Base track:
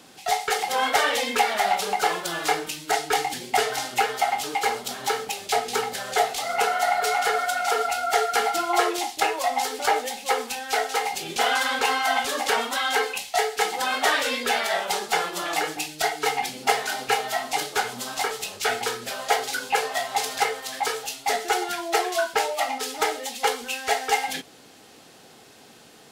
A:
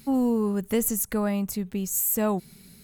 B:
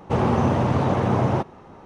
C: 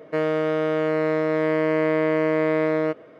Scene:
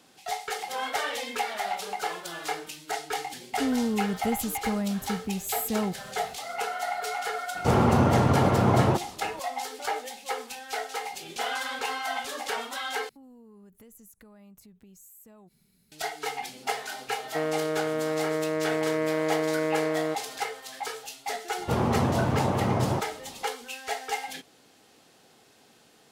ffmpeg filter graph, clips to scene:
-filter_complex "[1:a]asplit=2[a][b];[2:a]asplit=2[c][d];[0:a]volume=-8.5dB[e];[a]equalizer=f=81:t=o:w=2.9:g=10[f];[b]acompressor=threshold=-33dB:ratio=6:attack=3.2:release=140:knee=1:detection=peak[g];[e]asplit=2[h][i];[h]atrim=end=13.094[j];[g]atrim=end=2.83,asetpts=PTS-STARTPTS,volume=-16.5dB[k];[i]atrim=start=15.916[l];[f]atrim=end=2.83,asetpts=PTS-STARTPTS,volume=-7.5dB,afade=t=in:d=0.004:c=hsin,afade=t=out:st=2.826:d=0.004:c=hsin,adelay=155673S[m];[c]atrim=end=1.85,asetpts=PTS-STARTPTS,volume=-1dB,afade=t=in:d=0.004:c=hsin,afade=t=out:st=1.846:d=0.004:c=hsin,adelay=7550[n];[3:a]atrim=end=3.19,asetpts=PTS-STARTPTS,volume=-6dB,afade=t=in:d=0.004:c=hsin,afade=t=out:st=3.186:d=0.004:c=hsin,adelay=17220[o];[d]atrim=end=1.85,asetpts=PTS-STARTPTS,volume=-5dB,afade=t=in:d=0.004:c=hsin,afade=t=out:st=1.846:d=0.004:c=hsin,adelay=21580[p];[j][k]acrossfade=d=0.004:c1=hsin:c2=hsin[q];[q][l]acrossfade=d=0.004:c1=hsin:c2=hsin[r];[r][m][n][o][p]amix=inputs=5:normalize=0"

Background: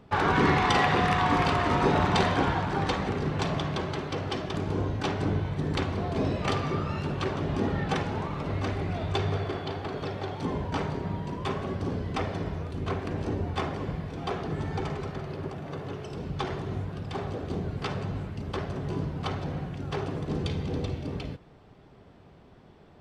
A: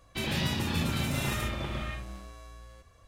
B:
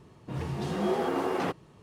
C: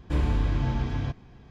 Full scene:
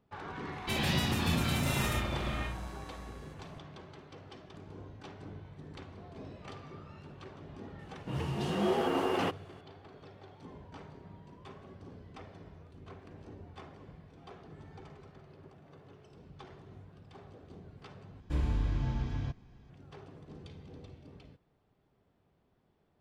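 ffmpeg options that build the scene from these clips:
-filter_complex "[0:a]volume=-19dB[a];[2:a]equalizer=f=2.9k:w=6.5:g=9[b];[3:a]bass=f=250:g=3,treble=f=4k:g=3[c];[a]asplit=2[d][e];[d]atrim=end=18.204[f];[c]atrim=end=1.5,asetpts=PTS-STARTPTS,volume=-9dB[g];[e]atrim=start=19.696[h];[1:a]atrim=end=3.07,asetpts=PTS-STARTPTS,volume=-0.5dB,afade=t=in:d=0.004:c=hsin,afade=t=out:st=3.066:d=0.004:c=hsin,adelay=520[i];[b]atrim=end=1.82,asetpts=PTS-STARTPTS,volume=-1.5dB,afade=t=in:d=0.004:c=hsin,afade=t=out:st=1.816:d=0.004:c=hsin,adelay=7790[j];[f][g]acrossfade=d=0.004:c1=hsin:c2=hsin[k];[k][h]acrossfade=d=0.004:c1=hsin:c2=hsin[l];[l][i][j]amix=inputs=3:normalize=0"

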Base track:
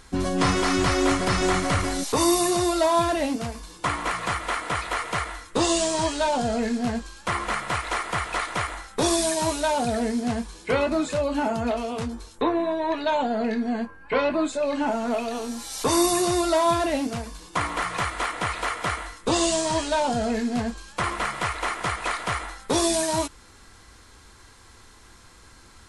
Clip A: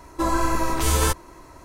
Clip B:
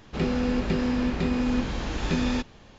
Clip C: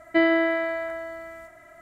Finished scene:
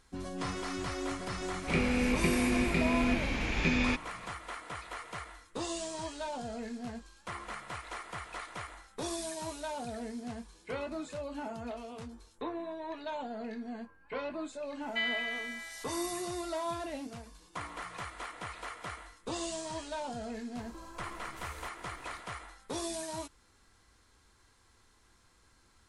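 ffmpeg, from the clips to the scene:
-filter_complex "[0:a]volume=-15dB[a];[2:a]equalizer=f=2.3k:w=3.4:g=14.5[b];[3:a]highpass=f=2.8k:t=q:w=2.4[c];[1:a]acompressor=threshold=-39dB:ratio=6:attack=3.2:release=140:knee=1:detection=peak[d];[b]atrim=end=2.78,asetpts=PTS-STARTPTS,volume=-4.5dB,afade=t=in:d=0.004:c=hsin,afade=t=out:st=2.776:d=0.004:c=hsin,adelay=1540[e];[c]atrim=end=1.81,asetpts=PTS-STARTPTS,volume=-5.5dB,afade=t=in:d=0.004:c=hsin,afade=t=out:st=1.806:d=0.004:c=hsin,adelay=14810[f];[d]atrim=end=1.64,asetpts=PTS-STARTPTS,volume=-8dB,afade=t=in:d=0.004:c=hsin,afade=t=out:st=1.636:d=0.004:c=hsin,adelay=20560[g];[a][e][f][g]amix=inputs=4:normalize=0"

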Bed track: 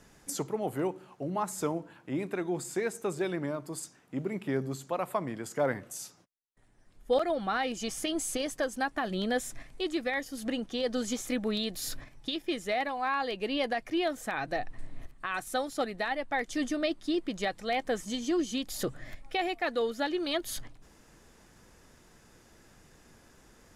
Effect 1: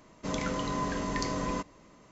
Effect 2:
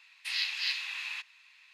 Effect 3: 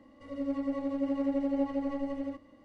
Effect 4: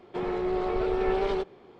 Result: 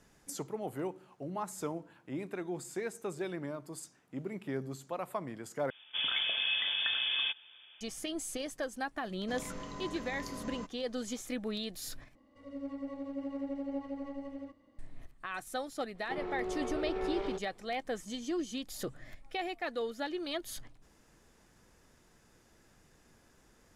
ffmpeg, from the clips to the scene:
-filter_complex "[1:a]asplit=2[a][b];[0:a]volume=-6dB[c];[a]lowpass=f=3.1k:t=q:w=0.5098,lowpass=f=3.1k:t=q:w=0.6013,lowpass=f=3.1k:t=q:w=0.9,lowpass=f=3.1k:t=q:w=2.563,afreqshift=-3600[d];[c]asplit=3[e][f][g];[e]atrim=end=5.704[h];[d]atrim=end=2.11,asetpts=PTS-STARTPTS,volume=-0.5dB[i];[f]atrim=start=7.806:end=12.154[j];[3:a]atrim=end=2.64,asetpts=PTS-STARTPTS,volume=-8dB[k];[g]atrim=start=14.786[l];[b]atrim=end=2.11,asetpts=PTS-STARTPTS,volume=-11.5dB,afade=t=in:d=0.004:c=hsin,afade=t=out:st=2.106:d=0.004:c=hsin,adelay=9040[m];[4:a]atrim=end=1.79,asetpts=PTS-STARTPTS,volume=-9.5dB,afade=t=in:d=0.004:c=hsin,afade=t=out:st=1.786:d=0.004:c=hsin,adelay=15950[n];[h][i]acrossfade=d=0.004:c1=hsin:c2=hsin[o];[o][j]acrossfade=d=0.004:c1=hsin:c2=hsin[p];[p][k]acrossfade=d=0.004:c1=hsin:c2=hsin[q];[q][l]acrossfade=d=0.004:c1=hsin:c2=hsin[r];[r][m][n]amix=inputs=3:normalize=0"

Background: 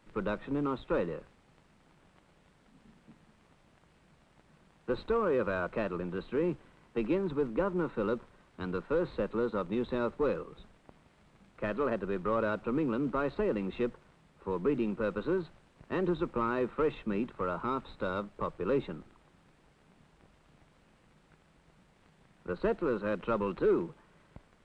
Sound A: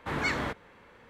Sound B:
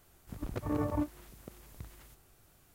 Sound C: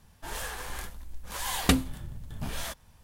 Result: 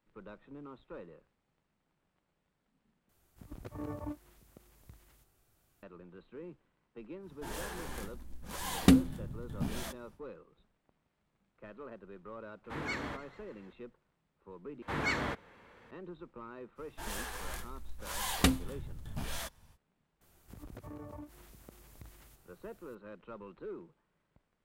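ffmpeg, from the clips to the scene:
-filter_complex "[2:a]asplit=2[a][b];[3:a]asplit=2[c][d];[1:a]asplit=2[e][f];[0:a]volume=-16.5dB[g];[c]equalizer=f=230:w=0.64:g=11.5[h];[e]asplit=7[i][j][k][l][m][n][o];[j]adelay=146,afreqshift=-56,volume=-17.5dB[p];[k]adelay=292,afreqshift=-112,volume=-21.8dB[q];[l]adelay=438,afreqshift=-168,volume=-26.1dB[r];[m]adelay=584,afreqshift=-224,volume=-30.4dB[s];[n]adelay=730,afreqshift=-280,volume=-34.7dB[t];[o]adelay=876,afreqshift=-336,volume=-39dB[u];[i][p][q][r][s][t][u]amix=inputs=7:normalize=0[v];[b]acompressor=threshold=-41dB:ratio=6:attack=3.2:release=140:knee=1:detection=peak[w];[g]asplit=3[x][y][z];[x]atrim=end=3.094[aa];[a]atrim=end=2.74,asetpts=PTS-STARTPTS,volume=-8.5dB[ab];[y]atrim=start=5.826:end=14.824[ac];[f]atrim=end=1.09,asetpts=PTS-STARTPTS,volume=-3dB[ad];[z]atrim=start=15.906[ae];[h]atrim=end=3.03,asetpts=PTS-STARTPTS,volume=-7dB,afade=t=in:d=0.1,afade=t=out:st=2.93:d=0.1,adelay=7190[af];[v]atrim=end=1.09,asetpts=PTS-STARTPTS,volume=-8.5dB,afade=t=in:d=0.004:c=hsin,afade=t=out:st=1.086:d=0.004:c=hsin,adelay=12640[ag];[d]atrim=end=3.03,asetpts=PTS-STARTPTS,volume=-4dB,afade=t=in:d=0.05,afade=t=out:st=2.98:d=0.05,adelay=16750[ah];[w]atrim=end=2.74,asetpts=PTS-STARTPTS,volume=-2.5dB,afade=t=in:d=0.004:c=hsin,afade=t=out:st=2.736:d=0.004:c=hsin,adelay=20210[ai];[aa][ab]acrossfade=d=0.004:c1=hsin:c2=hsin[aj];[aj][ac]acrossfade=d=0.004:c1=hsin:c2=hsin[ak];[ak][ad]acrossfade=d=0.004:c1=hsin:c2=hsin[al];[al][ae]acrossfade=d=0.004:c1=hsin:c2=hsin[am];[am][af][ag][ah][ai]amix=inputs=5:normalize=0"

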